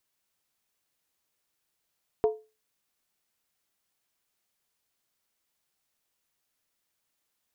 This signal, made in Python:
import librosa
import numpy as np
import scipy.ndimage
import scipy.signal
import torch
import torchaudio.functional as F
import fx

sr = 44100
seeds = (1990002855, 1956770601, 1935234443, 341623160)

y = fx.strike_skin(sr, length_s=0.63, level_db=-17, hz=434.0, decay_s=0.29, tilt_db=9, modes=5)